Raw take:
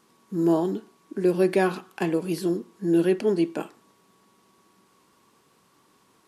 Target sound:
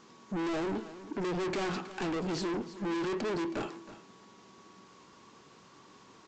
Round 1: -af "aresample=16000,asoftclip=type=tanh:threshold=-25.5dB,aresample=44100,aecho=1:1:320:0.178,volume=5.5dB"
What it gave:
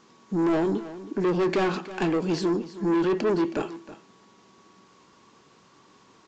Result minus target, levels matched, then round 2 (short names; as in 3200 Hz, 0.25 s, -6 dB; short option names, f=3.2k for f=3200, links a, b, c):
soft clip: distortion -5 dB
-af "aresample=16000,asoftclip=type=tanh:threshold=-37dB,aresample=44100,aecho=1:1:320:0.178,volume=5.5dB"